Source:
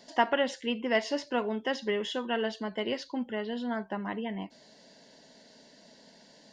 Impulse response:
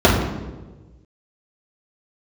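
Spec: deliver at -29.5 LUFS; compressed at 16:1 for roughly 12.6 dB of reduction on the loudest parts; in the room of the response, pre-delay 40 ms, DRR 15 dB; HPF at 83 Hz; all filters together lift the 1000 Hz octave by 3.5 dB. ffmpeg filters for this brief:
-filter_complex "[0:a]highpass=83,equalizer=f=1k:t=o:g=4.5,acompressor=threshold=-28dB:ratio=16,asplit=2[a][b];[1:a]atrim=start_sample=2205,adelay=40[c];[b][c]afir=irnorm=-1:irlink=0,volume=-41.5dB[d];[a][d]amix=inputs=2:normalize=0,volume=5dB"

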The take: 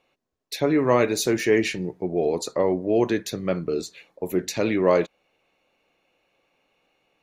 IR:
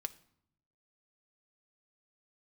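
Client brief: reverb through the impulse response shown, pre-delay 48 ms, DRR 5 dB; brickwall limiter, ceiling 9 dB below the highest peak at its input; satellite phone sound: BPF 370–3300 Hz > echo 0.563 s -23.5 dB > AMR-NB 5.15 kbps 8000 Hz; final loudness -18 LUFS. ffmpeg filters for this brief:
-filter_complex "[0:a]alimiter=limit=-15.5dB:level=0:latency=1,asplit=2[a][b];[1:a]atrim=start_sample=2205,adelay=48[c];[b][c]afir=irnorm=-1:irlink=0,volume=-3.5dB[d];[a][d]amix=inputs=2:normalize=0,highpass=370,lowpass=3.3k,aecho=1:1:563:0.0668,volume=12dB" -ar 8000 -c:a libopencore_amrnb -b:a 5150

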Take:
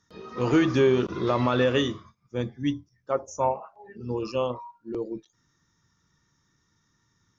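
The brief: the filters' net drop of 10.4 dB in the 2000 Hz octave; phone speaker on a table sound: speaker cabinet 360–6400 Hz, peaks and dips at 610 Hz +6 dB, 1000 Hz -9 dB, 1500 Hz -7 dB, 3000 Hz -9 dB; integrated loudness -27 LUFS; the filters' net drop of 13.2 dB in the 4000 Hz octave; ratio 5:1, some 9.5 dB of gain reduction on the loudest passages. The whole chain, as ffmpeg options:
-af "equalizer=f=2k:t=o:g=-5.5,equalizer=f=4k:t=o:g=-8.5,acompressor=threshold=-27dB:ratio=5,highpass=f=360:w=0.5412,highpass=f=360:w=1.3066,equalizer=f=610:t=q:w=4:g=6,equalizer=f=1k:t=q:w=4:g=-9,equalizer=f=1.5k:t=q:w=4:g=-7,equalizer=f=3k:t=q:w=4:g=-9,lowpass=f=6.4k:w=0.5412,lowpass=f=6.4k:w=1.3066,volume=8dB"

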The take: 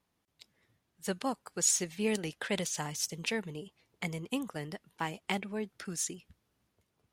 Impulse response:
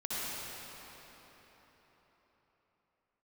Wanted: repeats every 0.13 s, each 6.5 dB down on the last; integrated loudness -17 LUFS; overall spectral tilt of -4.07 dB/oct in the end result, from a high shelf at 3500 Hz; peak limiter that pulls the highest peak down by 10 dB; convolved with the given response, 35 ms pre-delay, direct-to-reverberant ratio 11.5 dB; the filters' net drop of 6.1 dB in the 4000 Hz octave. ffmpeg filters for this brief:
-filter_complex "[0:a]highshelf=f=3.5k:g=-5,equalizer=f=4k:t=o:g=-5,alimiter=level_in=4dB:limit=-24dB:level=0:latency=1,volume=-4dB,aecho=1:1:130|260|390|520|650|780:0.473|0.222|0.105|0.0491|0.0231|0.0109,asplit=2[a][b];[1:a]atrim=start_sample=2205,adelay=35[c];[b][c]afir=irnorm=-1:irlink=0,volume=-17.5dB[d];[a][d]amix=inputs=2:normalize=0,volume=22.5dB"

